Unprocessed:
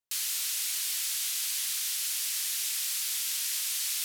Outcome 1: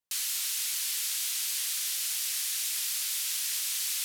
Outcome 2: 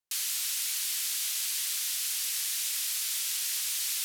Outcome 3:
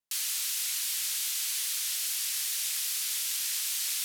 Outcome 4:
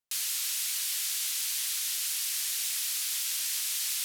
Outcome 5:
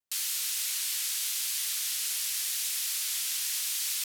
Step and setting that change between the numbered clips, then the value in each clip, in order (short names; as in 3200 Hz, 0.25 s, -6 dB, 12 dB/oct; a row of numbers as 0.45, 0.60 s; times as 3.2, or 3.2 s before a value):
vibrato, rate: 4.2, 13, 2.5, 7.2, 0.87 Hz